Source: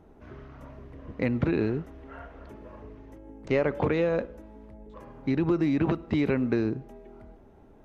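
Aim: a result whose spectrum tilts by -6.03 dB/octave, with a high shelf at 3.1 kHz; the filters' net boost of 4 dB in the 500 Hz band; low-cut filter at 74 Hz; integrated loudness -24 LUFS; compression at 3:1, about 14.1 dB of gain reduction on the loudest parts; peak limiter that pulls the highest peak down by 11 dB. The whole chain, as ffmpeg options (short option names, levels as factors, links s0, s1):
-af "highpass=74,equalizer=f=500:t=o:g=5,highshelf=f=3100:g=-5.5,acompressor=threshold=0.0126:ratio=3,volume=10,alimiter=limit=0.224:level=0:latency=1"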